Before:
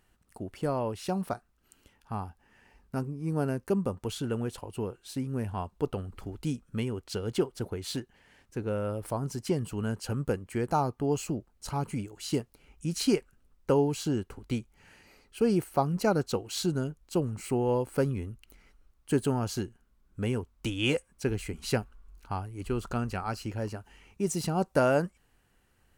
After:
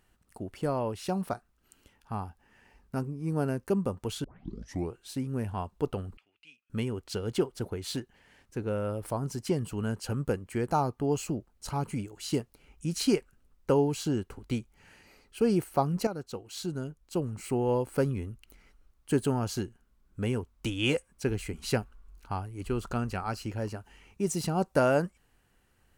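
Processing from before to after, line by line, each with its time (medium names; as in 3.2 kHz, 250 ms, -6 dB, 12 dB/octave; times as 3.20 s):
4.24 s: tape start 0.71 s
6.17–6.70 s: band-pass filter 2.6 kHz, Q 6.8
16.07–17.72 s: fade in, from -12 dB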